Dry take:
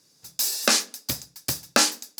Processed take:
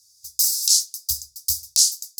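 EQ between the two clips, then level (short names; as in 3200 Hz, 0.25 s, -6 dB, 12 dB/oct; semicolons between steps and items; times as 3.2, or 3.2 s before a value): inverse Chebyshev band-stop 190–2100 Hz, stop band 50 dB; +6.5 dB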